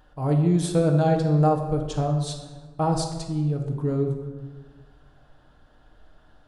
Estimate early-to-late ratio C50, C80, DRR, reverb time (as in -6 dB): 5.5 dB, 8.0 dB, 2.0 dB, 1.4 s